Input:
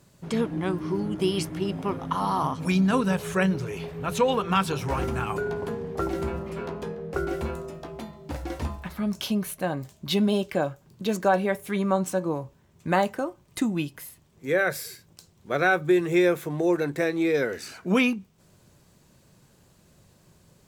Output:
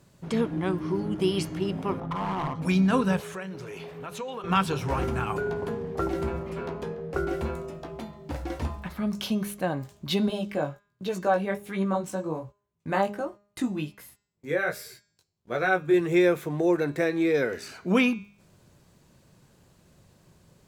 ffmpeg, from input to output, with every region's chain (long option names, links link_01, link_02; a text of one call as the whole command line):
ffmpeg -i in.wav -filter_complex "[0:a]asettb=1/sr,asplit=3[link_01][link_02][link_03];[link_01]atrim=end=2.004[link_04];[link_02]atrim=start=2:end=2.62,asetpts=PTS-STARTPTS,afade=type=in:duration=0.004:curve=qsin,afade=type=out:start_time=0.616:duration=0.004:curve=qsin,lowpass=frequency=1100:poles=1,aecho=1:1:5.8:0.36,atrim=end_sample=27342,volume=26dB,asoftclip=hard,volume=-26dB[link_05];[link_03]atrim=start=2.616[link_06];[link_04][link_05]acrossfade=duration=0.004:curve1=hsin:curve2=qsin[link_07];[link_07][link_06]acrossfade=duration=0.004:curve1=qsin:curve2=hsin,asettb=1/sr,asplit=3[link_08][link_09][link_10];[link_08]atrim=end=3.204[link_11];[link_09]atrim=start=3.2:end=4.44,asetpts=PTS-STARTPTS,afade=type=in:duration=0.004:curve=qsin,afade=type=out:start_time=1.236:duration=0.004:curve=qsin,highpass=frequency=310:poles=1,acompressor=threshold=-35dB:ratio=3:attack=3.2:release=140:knee=1:detection=peak[link_12];[link_10]atrim=start=4.436[link_13];[link_11][link_12]acrossfade=duration=0.004:curve1=hsin:curve2=qsin[link_14];[link_14][link_13]acrossfade=duration=0.004:curve1=qsin:curve2=hsin,asettb=1/sr,asplit=3[link_15][link_16][link_17];[link_15]atrim=end=10.284[link_18];[link_16]atrim=start=10.28:end=15.94,asetpts=PTS-STARTPTS,afade=type=in:duration=0.004:curve=qsin,afade=type=out:start_time=5.656:duration=0.004:curve=qsin,agate=range=-20dB:threshold=-49dB:ratio=16:release=100:detection=peak,flanger=delay=15.5:depth=4.9:speed=1.3[link_19];[link_17]atrim=start=15.936[link_20];[link_18][link_19]acrossfade=duration=0.004:curve1=hsin:curve2=qsin[link_21];[link_21][link_20]acrossfade=duration=0.004:curve1=qsin:curve2=hsin,highshelf=frequency=5300:gain=-4.5,bandreject=frequency=203.9:width_type=h:width=4,bandreject=frequency=407.8:width_type=h:width=4,bandreject=frequency=611.7:width_type=h:width=4,bandreject=frequency=815.6:width_type=h:width=4,bandreject=frequency=1019.5:width_type=h:width=4,bandreject=frequency=1223.4:width_type=h:width=4,bandreject=frequency=1427.3:width_type=h:width=4,bandreject=frequency=1631.2:width_type=h:width=4,bandreject=frequency=1835.1:width_type=h:width=4,bandreject=frequency=2039:width_type=h:width=4,bandreject=frequency=2242.9:width_type=h:width=4,bandreject=frequency=2446.8:width_type=h:width=4,bandreject=frequency=2650.7:width_type=h:width=4,bandreject=frequency=2854.6:width_type=h:width=4,bandreject=frequency=3058.5:width_type=h:width=4,bandreject=frequency=3262.4:width_type=h:width=4,bandreject=frequency=3466.3:width_type=h:width=4,bandreject=frequency=3670.2:width_type=h:width=4,bandreject=frequency=3874.1:width_type=h:width=4,bandreject=frequency=4078:width_type=h:width=4,bandreject=frequency=4281.9:width_type=h:width=4,bandreject=frequency=4485.8:width_type=h:width=4,bandreject=frequency=4689.7:width_type=h:width=4,bandreject=frequency=4893.6:width_type=h:width=4,bandreject=frequency=5097.5:width_type=h:width=4,bandreject=frequency=5301.4:width_type=h:width=4,bandreject=frequency=5505.3:width_type=h:width=4,bandreject=frequency=5709.2:width_type=h:width=4,bandreject=frequency=5913.1:width_type=h:width=4,bandreject=frequency=6117:width_type=h:width=4,bandreject=frequency=6320.9:width_type=h:width=4,bandreject=frequency=6524.8:width_type=h:width=4,bandreject=frequency=6728.7:width_type=h:width=4,bandreject=frequency=6932.6:width_type=h:width=4,bandreject=frequency=7136.5:width_type=h:width=4,bandreject=frequency=7340.4:width_type=h:width=4,bandreject=frequency=7544.3:width_type=h:width=4,bandreject=frequency=7748.2:width_type=h:width=4" out.wav